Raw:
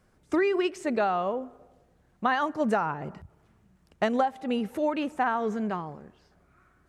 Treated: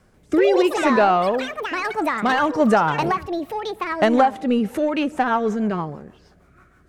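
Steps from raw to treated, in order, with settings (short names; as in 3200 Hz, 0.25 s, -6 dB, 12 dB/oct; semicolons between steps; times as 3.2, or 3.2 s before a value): in parallel at -3.5 dB: soft clip -25 dBFS, distortion -11 dB; on the sum: rotary speaker horn 0.65 Hz, later 6.3 Hz, at 4.26; echoes that change speed 0.141 s, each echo +6 st, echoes 3, each echo -6 dB; gain +6.5 dB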